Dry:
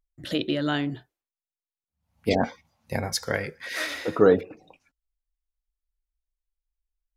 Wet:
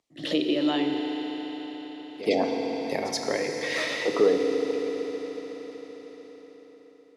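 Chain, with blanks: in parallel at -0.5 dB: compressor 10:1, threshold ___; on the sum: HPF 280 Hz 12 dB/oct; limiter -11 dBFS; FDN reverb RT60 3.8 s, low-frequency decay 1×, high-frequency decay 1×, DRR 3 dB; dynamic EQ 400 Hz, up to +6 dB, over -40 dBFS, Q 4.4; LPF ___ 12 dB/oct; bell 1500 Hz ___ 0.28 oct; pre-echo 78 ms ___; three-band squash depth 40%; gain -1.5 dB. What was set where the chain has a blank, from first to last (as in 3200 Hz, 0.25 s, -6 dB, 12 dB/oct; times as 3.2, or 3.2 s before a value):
-35 dBFS, 6900 Hz, -13.5 dB, -21.5 dB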